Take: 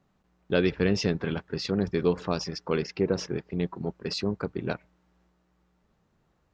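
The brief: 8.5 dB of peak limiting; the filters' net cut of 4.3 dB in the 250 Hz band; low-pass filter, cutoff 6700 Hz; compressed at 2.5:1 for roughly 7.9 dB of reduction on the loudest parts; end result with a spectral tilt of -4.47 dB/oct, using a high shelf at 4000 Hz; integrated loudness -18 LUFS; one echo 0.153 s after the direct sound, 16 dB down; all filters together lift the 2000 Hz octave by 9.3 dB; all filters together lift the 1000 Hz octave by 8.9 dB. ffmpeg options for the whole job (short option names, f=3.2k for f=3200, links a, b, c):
-af "lowpass=6.7k,equalizer=f=250:t=o:g=-7.5,equalizer=f=1k:t=o:g=9,equalizer=f=2k:t=o:g=8.5,highshelf=f=4k:g=3.5,acompressor=threshold=-28dB:ratio=2.5,alimiter=limit=-18.5dB:level=0:latency=1,aecho=1:1:153:0.158,volume=15.5dB"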